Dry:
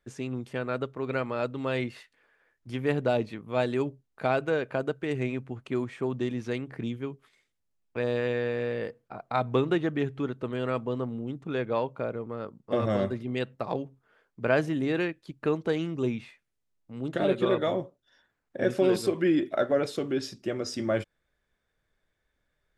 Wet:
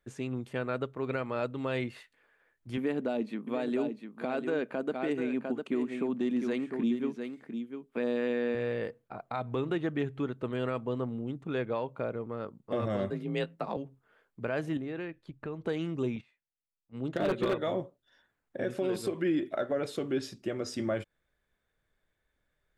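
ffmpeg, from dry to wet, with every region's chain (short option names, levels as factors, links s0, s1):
-filter_complex "[0:a]asettb=1/sr,asplit=3[s0][s1][s2];[s0]atrim=end=2.774[s3];[s1]atrim=start=2.77:end=8.55,asetpts=PTS-STARTPTS,afade=t=in:d=0.004:c=qsin,afade=t=out:st=5.776:d=0.004:c=qsin,lowshelf=f=150:t=q:w=3:g=-13,aecho=1:1:701:0.376,atrim=end_sample=254898[s4];[s2]atrim=start=8.546[s5];[s3][s4]acrossfade=d=0.004:c1=hsin:c2=qsin[s6];[s6][s5]acrossfade=d=0.004:c1=qsin:c2=hsin,asettb=1/sr,asplit=3[s7][s8][s9];[s7]atrim=end=13.104[s10];[s8]atrim=start=13.1:end=13.77,asetpts=PTS-STARTPTS,afade=t=in:d=0.004:c=qsin,afade=t=out:st=0.666:d=0.004:c=qsin,afreqshift=34,asplit=2[s11][s12];[s12]adelay=19,volume=0.299[s13];[s11][s13]amix=inputs=2:normalize=0,atrim=end_sample=29547[s14];[s9]atrim=start=13.766[s15];[s10][s14]acrossfade=d=0.004:c1=hsin:c2=qsin[s16];[s16][s15]acrossfade=d=0.004:c1=qsin:c2=hsin,asettb=1/sr,asplit=3[s17][s18][s19];[s17]atrim=end=14.774[s20];[s18]atrim=start=14.77:end=15.66,asetpts=PTS-STARTPTS,afade=t=in:d=0.004:c=qsin,afade=t=out:st=0.886:d=0.004:c=qsin,lowpass=f=2500:p=1,asubboost=boost=8.5:cutoff=130,acompressor=threshold=0.0158:ratio=2.5:attack=3.2:release=140:knee=1:detection=peak[s21];[s19]atrim=start=15.656[s22];[s20][s21]acrossfade=d=0.004:c1=hsin:c2=qsin[s23];[s23][s22]acrossfade=d=0.004:c1=qsin:c2=hsin,asettb=1/sr,asplit=3[s24][s25][s26];[s24]atrim=end=16.164[s27];[s25]atrim=start=16.16:end=17.54,asetpts=PTS-STARTPTS,afade=t=in:d=0.004:c=qsin,afade=t=out:st=1.376:d=0.004:c=qsin,agate=range=0.158:threshold=0.00794:ratio=16:release=100:detection=peak,lowpass=7100,aeval=exprs='0.119*(abs(mod(val(0)/0.119+3,4)-2)-1)':c=same[s28];[s26]atrim=start=17.536[s29];[s27][s28]acrossfade=d=0.004:c1=hsin:c2=qsin[s30];[s30][s29]acrossfade=d=0.004:c1=qsin:c2=hsin,equalizer=f=5400:w=2.5:g=-4.5,alimiter=limit=0.1:level=0:latency=1:release=192,volume=0.841"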